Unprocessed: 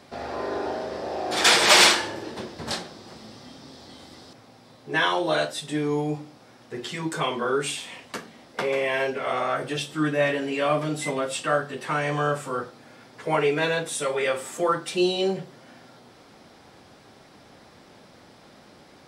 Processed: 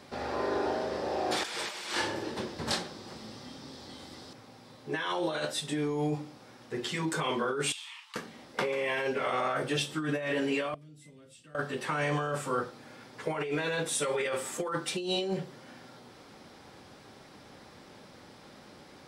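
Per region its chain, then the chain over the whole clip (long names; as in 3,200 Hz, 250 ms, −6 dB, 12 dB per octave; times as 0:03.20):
0:07.72–0:08.16: downward compressor 4 to 1, threshold −37 dBFS + Chebyshev high-pass with heavy ripple 840 Hz, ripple 6 dB
0:10.74–0:11.55: guitar amp tone stack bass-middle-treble 10-0-1 + downward compressor 2.5 to 1, threshold −50 dBFS
whole clip: compressor whose output falls as the input rises −27 dBFS, ratio −1; notch filter 680 Hz, Q 12; level −4 dB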